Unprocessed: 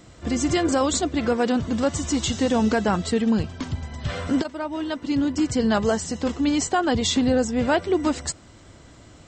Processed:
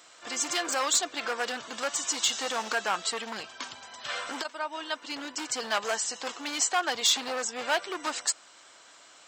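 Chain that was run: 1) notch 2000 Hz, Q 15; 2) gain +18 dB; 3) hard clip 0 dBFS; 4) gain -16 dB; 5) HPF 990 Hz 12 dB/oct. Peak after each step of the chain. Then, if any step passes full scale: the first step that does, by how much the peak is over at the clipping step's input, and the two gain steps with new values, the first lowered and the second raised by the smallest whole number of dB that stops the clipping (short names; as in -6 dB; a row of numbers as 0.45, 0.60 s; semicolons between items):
-10.5, +7.5, 0.0, -16.0, -13.0 dBFS; step 2, 7.5 dB; step 2 +10 dB, step 4 -8 dB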